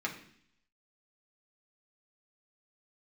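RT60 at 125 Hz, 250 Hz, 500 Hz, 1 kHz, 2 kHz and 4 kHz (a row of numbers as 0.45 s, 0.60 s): 0.80 s, 0.75 s, 0.60 s, 0.60 s, 0.75 s, 0.80 s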